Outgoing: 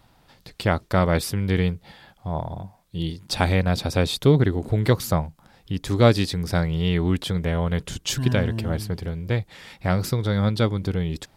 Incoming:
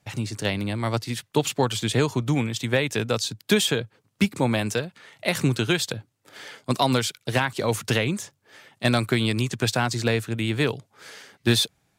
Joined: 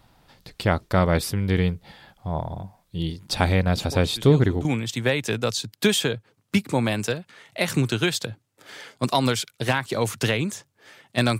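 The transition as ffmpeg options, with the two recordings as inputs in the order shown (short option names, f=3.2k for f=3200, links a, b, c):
-filter_complex "[1:a]asplit=2[a][b];[0:a]apad=whole_dur=11.39,atrim=end=11.39,atrim=end=4.652[c];[b]atrim=start=2.318:end=9.06[d];[a]atrim=start=1.4:end=2.32,asetpts=PTS-STARTPTS,volume=-14dB,afade=t=in:d=0.004:c=hsin,afade=t=out:st=0.916:d=0.004:c=hsin,adelay=164493S[e];[c][d]acrossfade=d=0.004:c1=hsin:c2=hsin[f];[f][e]amix=inputs=2:normalize=0"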